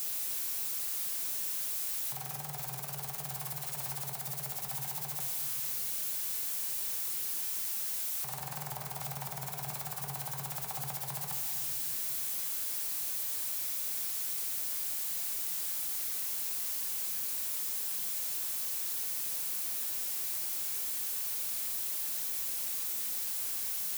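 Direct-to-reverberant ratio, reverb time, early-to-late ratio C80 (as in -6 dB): 2.0 dB, 1.8 s, 6.5 dB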